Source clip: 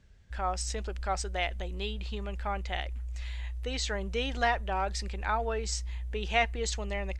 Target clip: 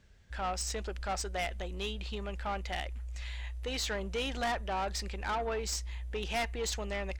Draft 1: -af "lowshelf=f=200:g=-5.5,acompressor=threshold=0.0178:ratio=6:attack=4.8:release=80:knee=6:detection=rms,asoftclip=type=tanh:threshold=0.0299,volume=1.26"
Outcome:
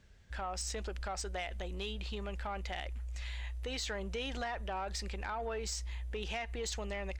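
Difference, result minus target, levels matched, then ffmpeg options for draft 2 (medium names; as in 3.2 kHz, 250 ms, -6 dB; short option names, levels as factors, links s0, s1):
compression: peak gain reduction +15 dB
-af "lowshelf=f=200:g=-5.5,asoftclip=type=tanh:threshold=0.0299,volume=1.26"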